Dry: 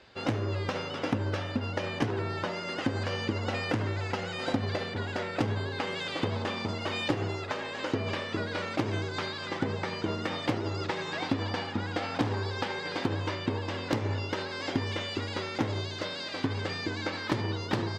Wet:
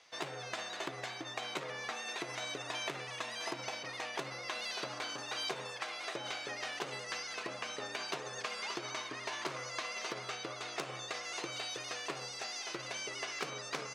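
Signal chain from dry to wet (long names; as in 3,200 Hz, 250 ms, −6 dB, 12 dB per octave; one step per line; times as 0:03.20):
speed change +29%
high-pass filter 1,100 Hz 6 dB per octave
level −3.5 dB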